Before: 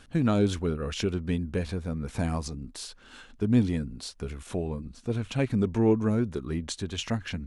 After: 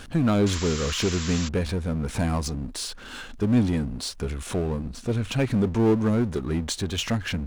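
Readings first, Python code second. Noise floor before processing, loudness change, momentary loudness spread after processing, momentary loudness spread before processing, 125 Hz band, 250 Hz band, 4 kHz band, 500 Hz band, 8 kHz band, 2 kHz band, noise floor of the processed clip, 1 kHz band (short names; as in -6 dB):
-53 dBFS, +3.5 dB, 9 LU, 14 LU, +3.5 dB, +3.0 dB, +7.0 dB, +3.0 dB, +8.5 dB, +6.0 dB, -41 dBFS, +4.5 dB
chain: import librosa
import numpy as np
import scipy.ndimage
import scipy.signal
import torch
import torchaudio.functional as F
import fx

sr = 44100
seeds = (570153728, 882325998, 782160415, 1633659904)

y = fx.power_curve(x, sr, exponent=0.7)
y = fx.spec_paint(y, sr, seeds[0], shape='noise', start_s=0.46, length_s=1.03, low_hz=950.0, high_hz=7700.0, level_db=-35.0)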